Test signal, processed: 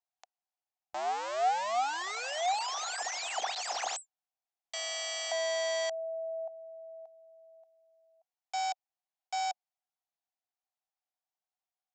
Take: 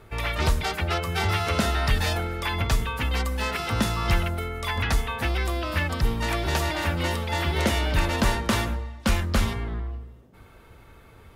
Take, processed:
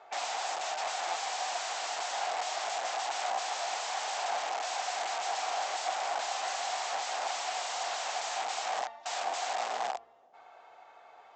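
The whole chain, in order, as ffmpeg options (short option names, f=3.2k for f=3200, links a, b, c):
-af "aresample=16000,aeval=exprs='(mod(25.1*val(0)+1,2)-1)/25.1':c=same,aresample=44100,highpass=f=740:t=q:w=8.3,volume=-6dB"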